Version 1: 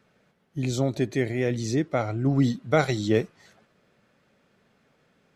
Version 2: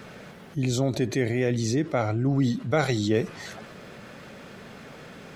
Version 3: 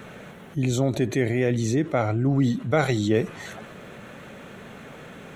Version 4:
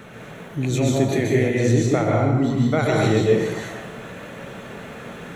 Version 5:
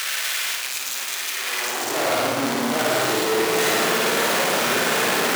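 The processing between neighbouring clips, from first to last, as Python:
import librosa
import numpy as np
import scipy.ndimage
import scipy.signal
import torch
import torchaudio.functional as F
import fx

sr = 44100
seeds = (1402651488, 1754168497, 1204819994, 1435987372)

y1 = fx.env_flatten(x, sr, amount_pct=50)
y1 = y1 * 10.0 ** (-3.0 / 20.0)
y2 = fx.peak_eq(y1, sr, hz=4900.0, db=-14.0, octaves=0.3)
y2 = y2 * 10.0 ** (2.0 / 20.0)
y3 = fx.rider(y2, sr, range_db=10, speed_s=0.5)
y3 = fx.rev_plate(y3, sr, seeds[0], rt60_s=0.98, hf_ratio=0.75, predelay_ms=115, drr_db=-3.0)
y4 = np.sign(y3) * np.sqrt(np.mean(np.square(y3)))
y4 = fx.room_flutter(y4, sr, wall_m=9.4, rt60_s=0.86)
y4 = fx.filter_sweep_highpass(y4, sr, from_hz=2000.0, to_hz=310.0, start_s=1.32, end_s=2.18, q=0.72)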